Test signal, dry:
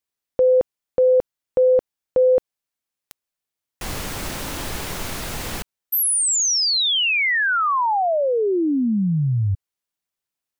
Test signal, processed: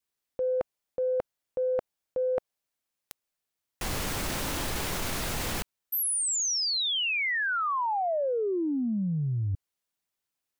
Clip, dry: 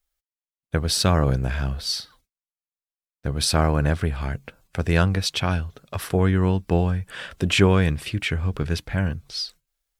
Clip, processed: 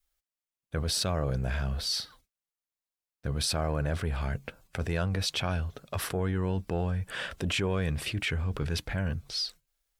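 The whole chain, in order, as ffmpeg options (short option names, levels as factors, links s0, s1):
-af "adynamicequalizer=threshold=0.0251:dfrequency=600:dqfactor=1.8:tfrequency=600:tqfactor=1.8:attack=5:release=100:ratio=0.375:range=2:mode=boostabove:tftype=bell,areverse,acompressor=threshold=0.0355:ratio=6:attack=9.5:release=21:knee=6:detection=rms,areverse"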